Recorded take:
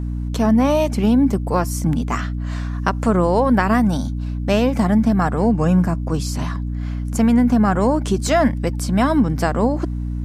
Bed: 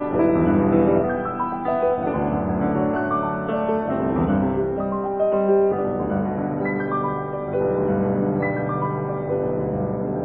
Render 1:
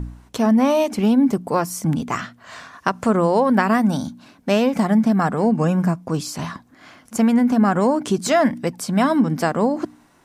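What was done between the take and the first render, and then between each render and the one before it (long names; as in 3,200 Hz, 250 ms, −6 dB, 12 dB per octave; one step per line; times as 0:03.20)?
hum removal 60 Hz, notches 5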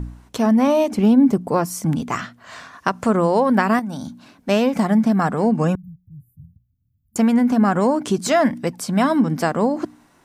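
0:00.67–0:01.66: tilt shelving filter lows +3 dB, about 800 Hz
0:03.79–0:04.49: downward compressor 4 to 1, threshold −26 dBFS
0:05.75–0:07.16: inverse Chebyshev band-stop filter 560–5,500 Hz, stop band 80 dB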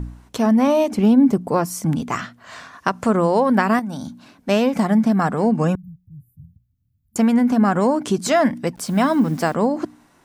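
0:08.76–0:09.55: hold until the input has moved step −41 dBFS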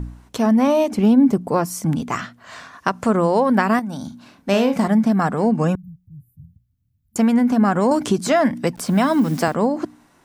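0:04.06–0:04.88: double-tracking delay 41 ms −8.5 dB
0:07.91–0:09.48: multiband upward and downward compressor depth 70%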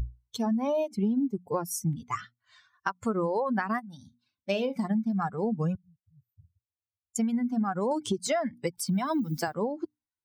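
spectral dynamics exaggerated over time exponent 2
downward compressor 6 to 1, threshold −25 dBFS, peak gain reduction 13 dB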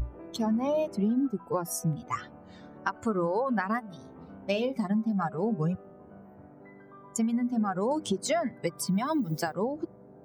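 mix in bed −27.5 dB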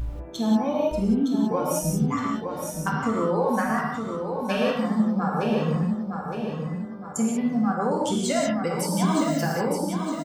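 repeating echo 914 ms, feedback 41%, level −6 dB
reverb whose tail is shaped and stops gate 210 ms flat, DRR −3 dB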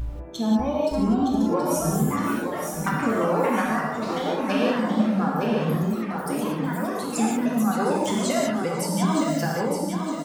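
delay with pitch and tempo change per echo 594 ms, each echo +4 semitones, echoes 3, each echo −6 dB
feedback echo with a high-pass in the loop 492 ms, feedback 72%, level −19 dB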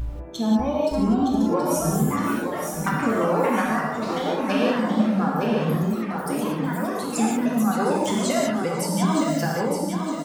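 level +1 dB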